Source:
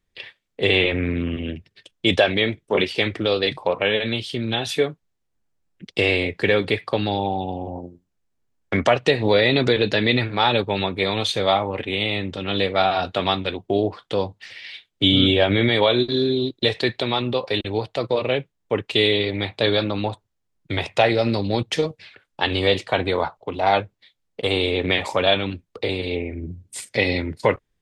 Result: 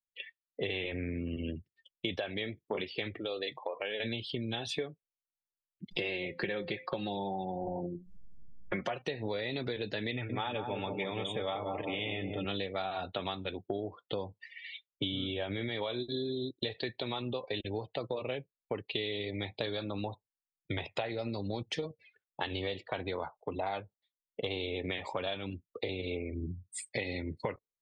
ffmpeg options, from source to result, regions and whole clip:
-filter_complex "[0:a]asettb=1/sr,asplit=3[a][b][c];[a]atrim=end=3.194[d];[b]atrim=start=3.19:end=4,asetpts=PTS-STARTPTS,afade=t=in:d=0.004:c=qsin,afade=t=out:st=0.806:d=0.004:c=qsin,bass=f=250:g=-10,treble=f=4k:g=0,acompressor=threshold=-34dB:ratio=1.5:attack=3.2:release=140:knee=1:detection=peak,bandreject=f=60:t=h:w=6,bandreject=f=120:t=h:w=6,bandreject=f=180:t=h:w=6,bandreject=f=240:t=h:w=6[e];[c]atrim=start=3.996[f];[d][e]acrossfade=d=0.004:c1=hsin:c2=qsin[g];[g][f]acrossfade=d=0.004:c1=qsin:c2=hsin,asettb=1/sr,asplit=3[h][i][j];[h]atrim=end=5.914[k];[i]atrim=start=5.91:end=9.02,asetpts=PTS-STARTPTS,afade=t=in:d=0.004:c=qsin,afade=t=out:st=3.106:d=0.004:c=qsin,acompressor=mode=upward:threshold=-21dB:ratio=2.5:attack=3.2:release=140:knee=2.83:detection=peak,aecho=1:1:5.6:0.63,atrim=end_sample=137151,bandreject=f=259.3:t=h:w=4,bandreject=f=518.6:t=h:w=4,bandreject=f=777.9:t=h:w=4,bandreject=f=1.0372k:t=h:w=4,bandreject=f=1.2965k:t=h:w=4,bandreject=f=1.5558k:t=h:w=4,bandreject=f=1.8151k:t=h:w=4,bandreject=f=2.0744k:t=h:w=4,bandreject=f=2.3337k:t=h:w=4,bandreject=f=2.593k:t=h:w=4,bandreject=f=2.8523k:t=h:w=4,bandreject=f=3.1116k:t=h:w=4,bandreject=f=3.3709k:t=h:w=4,bandreject=f=3.6302k:t=h:w=4,bandreject=f=3.8895k:t=h:w=4,bandreject=f=4.1488k:t=h:w=4,bandreject=f=4.4081k:t=h:w=4,bandreject=f=4.6674k:t=h:w=4,bandreject=f=4.9267k:t=h:w=4,bandreject=f=5.186k:t=h:w=4,bandreject=f=5.4453k:t=h:w=4,bandreject=f=5.7046k:t=h:w=4,bandreject=f=5.9639k:t=h:w=4,bandreject=f=6.2232k:t=h:w=4,bandreject=f=6.4825k:t=h:w=4,bandreject=f=6.7418k:t=h:w=4,bandreject=f=7.0011k:t=h:w=4,bandreject=f=7.2604k:t=h:w=4,bandreject=f=7.5197k:t=h:w=4,bandreject=f=7.779k:t=h:w=4,bandreject=f=8.0383k:t=h:w=4,bandreject=f=8.2976k:t=h:w=4,bandreject=f=8.5569k:t=h:w=4[l];[j]atrim=start=9.016[m];[k][l]acrossfade=d=0.004:c1=hsin:c2=qsin[n];[n][m]acrossfade=d=0.004:c1=qsin:c2=hsin,asettb=1/sr,asplit=3[o][p][q];[o]atrim=end=10.114[r];[p]atrim=start=10.11:end=12.45,asetpts=PTS-STARTPTS,afade=t=in:d=0.004:c=qsin,afade=t=out:st=2.336:d=0.004:c=qsin,asuperstop=centerf=4900:order=20:qfactor=1.7,aecho=1:1:6.8:0.3,atrim=end_sample=103194,asplit=2[s][t];[t]adelay=183,lowpass=f=1k:p=1,volume=-5dB,asplit=2[u][v];[v]adelay=183,lowpass=f=1k:p=1,volume=0.49,asplit=2[w][x];[x]adelay=183,lowpass=f=1k:p=1,volume=0.49,asplit=2[y][z];[z]adelay=183,lowpass=f=1k:p=1,volume=0.49,asplit=2[aa][ab];[ab]adelay=183,lowpass=f=1k:p=1,volume=0.49,asplit=2[ac][ad];[ad]adelay=183,lowpass=f=1k:p=1,volume=0.49[ae];[s][u][w][y][aa][ac][ae]amix=inputs=7:normalize=0,atrim=end_sample=103194[af];[q]atrim=start=12.446[ag];[r][af]acrossfade=d=0.004:c1=hsin:c2=qsin[ah];[ah][ag]acrossfade=d=0.004:c1=qsin:c2=hsin,afftdn=nr=29:nf=-35,acompressor=threshold=-27dB:ratio=10,volume=-5dB"

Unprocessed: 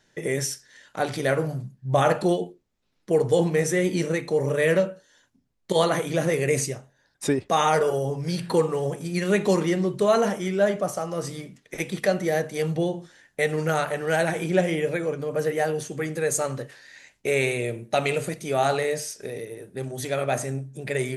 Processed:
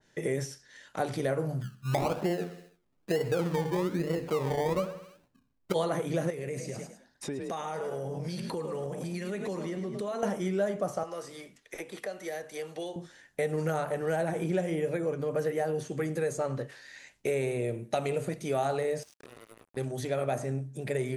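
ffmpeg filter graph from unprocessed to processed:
-filter_complex "[0:a]asettb=1/sr,asplit=3[a][b][c];[a]atrim=end=1.614[d];[b]atrim=start=1.61:end=5.74,asetpts=PTS-STARTPTS,afade=t=in:d=0.004:c=qsin,afade=t=out:st=4.126:d=0.004:c=qsin,lowpass=f=1.7k:w=0.5412,lowpass=f=1.7k:w=1.3066,acrusher=samples=26:mix=1:aa=0.000001:lfo=1:lforange=15.6:lforate=1.1,aecho=1:1:64|128|192|256|320:0.158|0.0888|0.0497|0.0278|0.0156,atrim=end_sample=182133[e];[c]atrim=start=5.736[f];[d][e]acrossfade=d=0.004:c1=hsin:c2=qsin[g];[g][f]acrossfade=d=0.004:c1=qsin:c2=hsin,asettb=1/sr,asplit=3[h][i][j];[h]atrim=end=6.304[k];[i]atrim=start=6.3:end=10.23,asetpts=PTS-STARTPTS,afade=t=in:d=0.004:c=qsin,afade=t=out:st=3.926:d=0.004:c=qsin,asplit=4[l][m][n][o];[m]adelay=104,afreqshift=41,volume=-10.5dB[p];[n]adelay=208,afreqshift=82,volume=-20.7dB[q];[o]adelay=312,afreqshift=123,volume=-30.8dB[r];[l][p][q][r]amix=inputs=4:normalize=0,atrim=end_sample=173313,acompressor=threshold=-30dB:ratio=6:attack=3.2:release=140:knee=1:detection=peak[s];[j]atrim=start=10.226[t];[k][s]acrossfade=d=0.004:c1=hsin:c2=qsin[u];[u][t]acrossfade=d=0.004:c1=qsin:c2=hsin,asettb=1/sr,asplit=3[v][w][x];[v]atrim=end=11.034[y];[w]atrim=start=11.03:end=12.96,asetpts=PTS-STARTPTS,afade=t=in:d=0.004:c=qsin,afade=t=out:st=1.926:d=0.004:c=qsin,equalizer=f=150:t=o:w=2.1:g=-14,acrossover=split=210|1800[z][aa][ab];[z]acompressor=threshold=-56dB:ratio=4[ac];[aa]acompressor=threshold=-34dB:ratio=4[ad];[ab]acompressor=threshold=-43dB:ratio=4[ae];[ac][ad][ae]amix=inputs=3:normalize=0[af];[x]atrim=start=12.956[ag];[y][af]acrossfade=d=0.004:c1=hsin:c2=qsin[ah];[ah][ag]acrossfade=d=0.004:c1=qsin:c2=hsin,asettb=1/sr,asplit=3[ai][aj][ak];[ai]atrim=end=19.034[al];[aj]atrim=start=19.03:end=19.77,asetpts=PTS-STARTPTS,afade=t=in:d=0.004:c=qsin,afade=t=out:st=0.736:d=0.004:c=qsin,highpass=100,acompressor=threshold=-47dB:ratio=4:attack=3.2:release=140:knee=1:detection=peak,acrusher=bits=6:mix=0:aa=0.5[am];[ak]atrim=start=19.766[an];[al][am]acrossfade=d=0.004:c1=hsin:c2=qsin[ao];[ao][an]acrossfade=d=0.004:c1=qsin:c2=hsin,acrossover=split=1100|6100[ap][aq][ar];[ap]acompressor=threshold=-25dB:ratio=4[as];[aq]acompressor=threshold=-41dB:ratio=4[at];[ar]acompressor=threshold=-48dB:ratio=4[au];[as][at][au]amix=inputs=3:normalize=0,adynamicequalizer=threshold=0.00708:dfrequency=1800:dqfactor=0.7:tfrequency=1800:tqfactor=0.7:attack=5:release=100:ratio=0.375:range=2:mode=cutabove:tftype=highshelf,volume=-1.5dB"

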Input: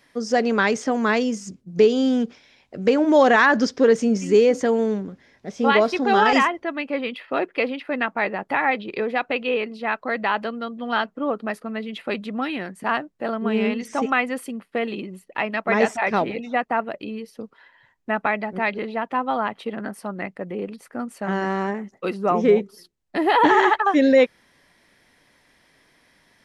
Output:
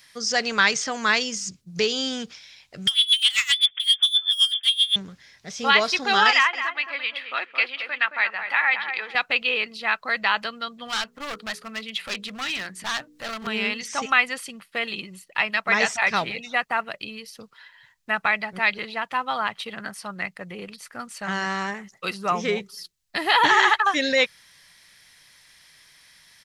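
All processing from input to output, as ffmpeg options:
-filter_complex "[0:a]asettb=1/sr,asplit=3[a][b][c];[a]atrim=end=2.874[d];[b]atrim=start=2.87:end=4.96,asetpts=PTS-STARTPTS,afade=t=in:d=0.004:c=qsin,afade=t=out:st=2.086:d=0.004:c=qsin,lowpass=f=3.1k:t=q:w=0.5098,lowpass=f=3.1k:t=q:w=0.6013,lowpass=f=3.1k:t=q:w=0.9,lowpass=f=3.1k:t=q:w=2.563,afreqshift=-3700,asoftclip=type=hard:threshold=-21dB,aeval=exprs='val(0)*pow(10,-20*(0.5-0.5*cos(2*PI*7.7*n/s))/20)':c=same[e];[c]atrim=start=4.956[f];[d][e]acrossfade=d=0.004:c1=hsin:c2=qsin[g];[g][f]acrossfade=d=0.004:c1=qsin:c2=hsin,asettb=1/sr,asplit=3[h][i][j];[h]atrim=end=6.314[k];[i]atrim=start=6.31:end=9.15,asetpts=PTS-STARTPTS,afade=t=in:d=0.004:c=qsin,afade=t=out:st=2.836:d=0.004:c=qsin,bandpass=f=1.9k:t=q:w=0.71,asplit=2[l][m];[m]adelay=220,lowpass=f=1.6k:p=1,volume=-6dB,asplit=2[n][o];[o]adelay=220,lowpass=f=1.6k:p=1,volume=0.25,asplit=2[p][q];[q]adelay=220,lowpass=f=1.6k:p=1,volume=0.25[r];[l][n][p][r]amix=inputs=4:normalize=0,atrim=end_sample=125244[s];[j]atrim=start=9.146[t];[k][s]acrossfade=d=0.004:c1=hsin:c2=qsin[u];[u][t]acrossfade=d=0.004:c1=qsin:c2=hsin,asettb=1/sr,asplit=3[v][w][x];[v]atrim=end=10.874[y];[w]atrim=start=10.87:end=13.47,asetpts=PTS-STARTPTS,afade=t=in:d=0.004:c=qsin,afade=t=out:st=2.596:d=0.004:c=qsin,bandreject=f=60:t=h:w=6,bandreject=f=120:t=h:w=6,bandreject=f=180:t=h:w=6,bandreject=f=240:t=h:w=6,bandreject=f=300:t=h:w=6,bandreject=f=360:t=h:w=6,bandreject=f=420:t=h:w=6,bandreject=f=480:t=h:w=6,acompressor=mode=upward:threshold=-34dB:ratio=2.5:attack=3.2:release=140:knee=2.83:detection=peak,volume=25.5dB,asoftclip=hard,volume=-25.5dB[z];[x]atrim=start=13.466[aa];[y][z]acrossfade=d=0.004:c1=hsin:c2=qsin[ab];[ab][aa]acrossfade=d=0.004:c1=qsin:c2=hsin,acrossover=split=7400[ac][ad];[ad]acompressor=threshold=-58dB:ratio=4:attack=1:release=60[ae];[ac][ae]amix=inputs=2:normalize=0,firequalizer=gain_entry='entry(160,0);entry(240,-11);entry(1200,3);entry(4200,13)':delay=0.05:min_phase=1,volume=-1.5dB"

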